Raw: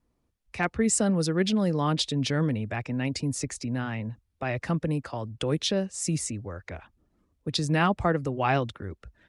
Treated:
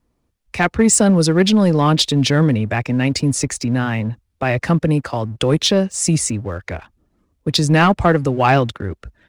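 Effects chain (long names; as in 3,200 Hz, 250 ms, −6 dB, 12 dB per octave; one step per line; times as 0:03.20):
leveller curve on the samples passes 1
level +8 dB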